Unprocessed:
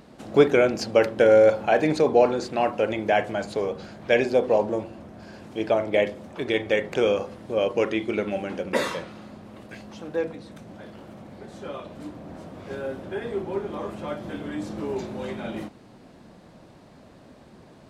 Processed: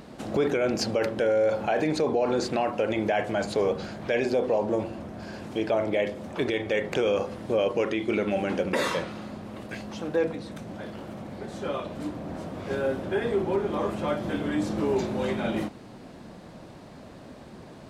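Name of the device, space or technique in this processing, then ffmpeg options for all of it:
stacked limiters: -af "alimiter=limit=-11.5dB:level=0:latency=1:release=36,alimiter=limit=-17dB:level=0:latency=1:release=268,alimiter=limit=-20.5dB:level=0:latency=1:release=26,volume=4.5dB"

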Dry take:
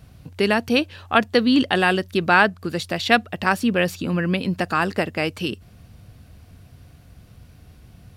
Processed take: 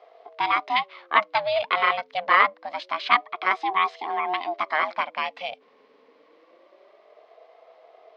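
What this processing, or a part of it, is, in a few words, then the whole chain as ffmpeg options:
voice changer toy: -af "aeval=exprs='val(0)*sin(2*PI*460*n/s+460*0.25/0.26*sin(2*PI*0.26*n/s))':channel_layout=same,highpass=580,equalizer=frequency=680:width_type=q:width=4:gain=4,equalizer=frequency=1100:width_type=q:width=4:gain=9,equalizer=frequency=2100:width_type=q:width=4:gain=6,lowpass=frequency=4300:width=0.5412,lowpass=frequency=4300:width=1.3066,volume=-3dB"

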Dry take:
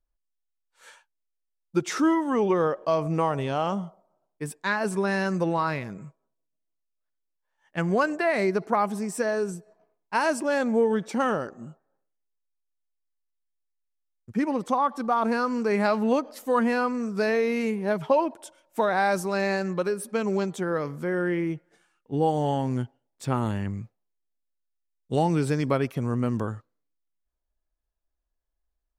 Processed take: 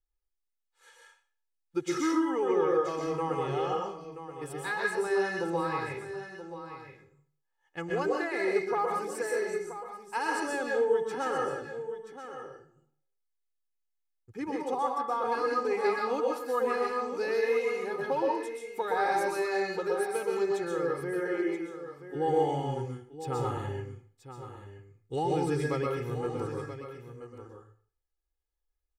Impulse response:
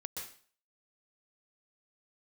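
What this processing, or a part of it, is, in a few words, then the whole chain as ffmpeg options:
microphone above a desk: -filter_complex "[0:a]asplit=3[link_01][link_02][link_03];[link_01]afade=type=out:start_time=21.19:duration=0.02[link_04];[link_02]highpass=frequency=240:width=0.5412,highpass=frequency=240:width=1.3066,afade=type=in:start_time=21.19:duration=0.02,afade=type=out:start_time=22.14:duration=0.02[link_05];[link_03]afade=type=in:start_time=22.14:duration=0.02[link_06];[link_04][link_05][link_06]amix=inputs=3:normalize=0,aecho=1:1:2.4:0.84[link_07];[1:a]atrim=start_sample=2205[link_08];[link_07][link_08]afir=irnorm=-1:irlink=0,aecho=1:1:979:0.266,volume=-6dB"

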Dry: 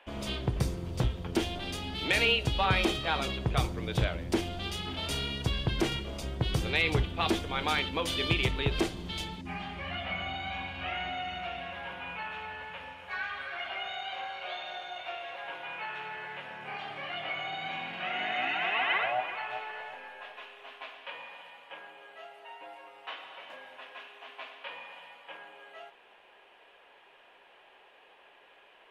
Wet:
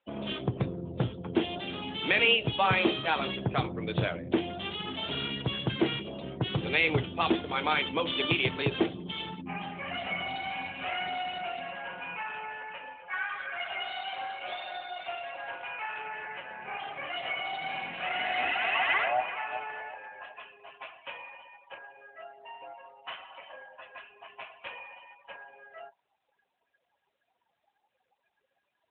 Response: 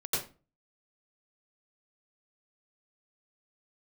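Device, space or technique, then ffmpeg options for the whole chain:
mobile call with aggressive noise cancelling: -af "highpass=120,afftdn=noise_reduction=31:noise_floor=-46,volume=3dB" -ar 8000 -c:a libopencore_amrnb -b:a 12200

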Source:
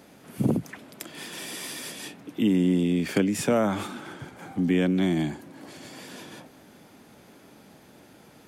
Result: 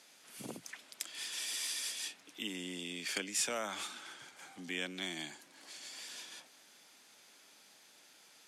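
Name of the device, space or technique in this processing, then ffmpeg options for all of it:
piezo pickup straight into a mixer: -af "lowpass=6500,aderivative,volume=5.5dB"

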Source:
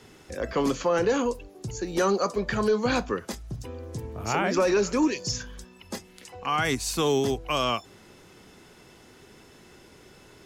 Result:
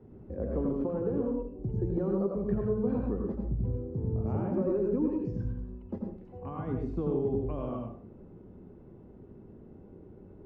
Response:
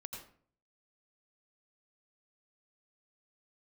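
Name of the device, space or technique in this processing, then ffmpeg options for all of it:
television next door: -filter_complex "[0:a]acompressor=threshold=-28dB:ratio=4,lowpass=410[link_01];[1:a]atrim=start_sample=2205[link_02];[link_01][link_02]afir=irnorm=-1:irlink=0,volume=7dB"

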